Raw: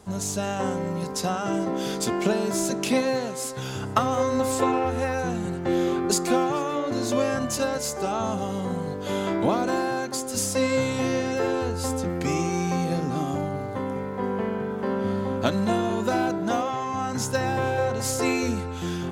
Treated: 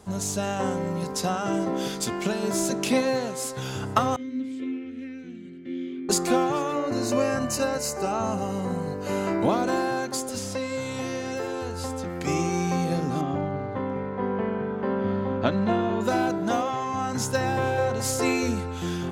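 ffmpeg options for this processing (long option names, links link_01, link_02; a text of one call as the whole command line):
ffmpeg -i in.wav -filter_complex "[0:a]asettb=1/sr,asplit=3[link_01][link_02][link_03];[link_01]atrim=end=1.884[link_04];[link_02]atrim=start=1.88:end=2.43,asetpts=PTS-STARTPTS,afade=type=in:duration=0.004:curve=qsin,afade=type=out:start_time=0.546:duration=0.004:curve=qsin,equalizer=frequency=480:width=0.54:gain=-5.5[link_05];[link_03]atrim=start=2.426[link_06];[link_04][link_05]acrossfade=duration=0.004:curve1=hsin:curve2=qsin[link_07];[link_07][link_06]acrossfade=duration=0.004:curve1=qsin:curve2=hsin,asettb=1/sr,asplit=3[link_08][link_09][link_10];[link_08]atrim=end=4.164[link_11];[link_09]atrim=start=4.16:end=6.09,asetpts=PTS-STARTPTS,afade=type=in:duration=0.004:curve=qsin,afade=type=out:start_time=1.926:duration=0.004:curve=qsin,asplit=3[link_12][link_13][link_14];[link_12]bandpass=frequency=270:width_type=q:width=8,volume=0dB[link_15];[link_13]bandpass=frequency=2290:width_type=q:width=8,volume=-6dB[link_16];[link_14]bandpass=frequency=3010:width_type=q:width=8,volume=-9dB[link_17];[link_15][link_16][link_17]amix=inputs=3:normalize=0[link_18];[link_10]atrim=start=6.086[link_19];[link_11][link_18]acrossfade=duration=0.004:curve1=hsin:curve2=qsin[link_20];[link_20][link_19]acrossfade=duration=0.004:curve1=qsin:curve2=hsin,asettb=1/sr,asplit=3[link_21][link_22][link_23];[link_21]atrim=end=6.724[link_24];[link_22]atrim=start=6.72:end=9.45,asetpts=PTS-STARTPTS,afade=type=in:duration=0.004:curve=qsin,afade=type=out:start_time=2.726:duration=0.004:curve=qsin,asuperstop=centerf=3400:order=4:qfactor=5[link_25];[link_23]atrim=start=9.446[link_26];[link_24][link_25]acrossfade=duration=0.004:curve1=hsin:curve2=qsin[link_27];[link_27][link_26]acrossfade=duration=0.004:curve1=qsin:curve2=hsin,asettb=1/sr,asplit=3[link_28][link_29][link_30];[link_28]atrim=end=10.294[link_31];[link_29]atrim=start=10.29:end=12.27,asetpts=PTS-STARTPTS,afade=type=in:duration=0.004:curve=qsin,afade=type=out:start_time=1.976:duration=0.004:curve=qsin,acrossover=split=640|5300[link_32][link_33][link_34];[link_32]acompressor=threshold=-31dB:ratio=4[link_35];[link_33]acompressor=threshold=-35dB:ratio=4[link_36];[link_34]acompressor=threshold=-44dB:ratio=4[link_37];[link_35][link_36][link_37]amix=inputs=3:normalize=0[link_38];[link_30]atrim=start=12.266[link_39];[link_31][link_38]acrossfade=duration=0.004:curve1=hsin:curve2=qsin[link_40];[link_40][link_39]acrossfade=duration=0.004:curve1=qsin:curve2=hsin,asettb=1/sr,asplit=3[link_41][link_42][link_43];[link_41]atrim=end=13.214[link_44];[link_42]atrim=start=13.21:end=16.01,asetpts=PTS-STARTPTS,afade=type=in:duration=0.004:curve=qsin,afade=type=out:start_time=2.796:duration=0.004:curve=qsin,lowpass=3100[link_45];[link_43]atrim=start=16.006[link_46];[link_44][link_45]acrossfade=duration=0.004:curve1=hsin:curve2=qsin[link_47];[link_47][link_46]acrossfade=duration=0.004:curve1=qsin:curve2=hsin" out.wav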